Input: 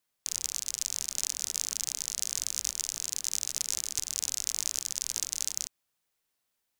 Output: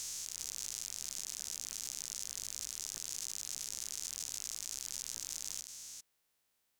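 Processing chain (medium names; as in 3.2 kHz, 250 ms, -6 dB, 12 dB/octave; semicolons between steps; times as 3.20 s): spectrogram pixelated in time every 400 ms; peak limiter -23.5 dBFS, peak gain reduction 11 dB; trim +3 dB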